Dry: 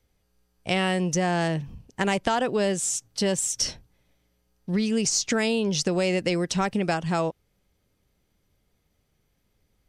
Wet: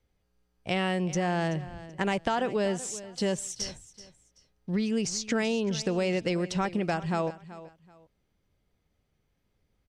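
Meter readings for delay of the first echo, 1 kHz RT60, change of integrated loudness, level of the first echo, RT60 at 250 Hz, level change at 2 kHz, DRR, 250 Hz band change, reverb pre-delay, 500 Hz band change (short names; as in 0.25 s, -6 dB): 0.381 s, none, -4.5 dB, -16.0 dB, none, -4.5 dB, none, -3.5 dB, none, -3.5 dB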